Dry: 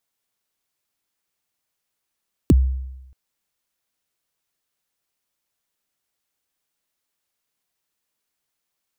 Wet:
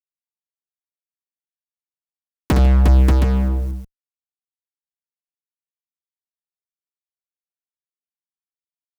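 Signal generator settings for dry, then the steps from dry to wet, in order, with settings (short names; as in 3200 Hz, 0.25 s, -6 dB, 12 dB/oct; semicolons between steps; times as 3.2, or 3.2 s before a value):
kick drum length 0.63 s, from 390 Hz, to 65 Hz, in 31 ms, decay 0.97 s, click on, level -7.5 dB
AGC gain up to 16 dB; fuzz box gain 34 dB, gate -40 dBFS; tapped delay 63/148/356/584/718 ms -6/-18/-4/-3.5/-7 dB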